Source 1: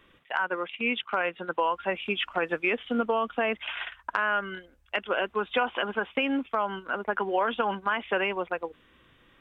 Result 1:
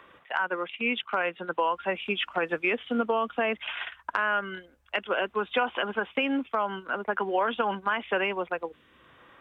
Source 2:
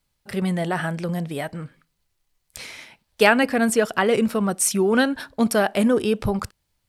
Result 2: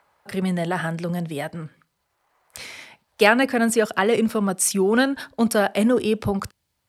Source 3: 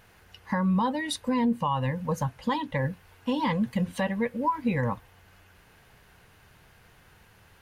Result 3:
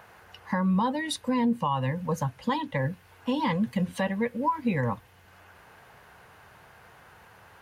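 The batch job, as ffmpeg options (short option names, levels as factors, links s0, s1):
-filter_complex "[0:a]highpass=63,acrossover=split=100|540|1500[s0][s1][s2][s3];[s2]acompressor=mode=upward:threshold=0.00562:ratio=2.5[s4];[s0][s1][s4][s3]amix=inputs=4:normalize=0"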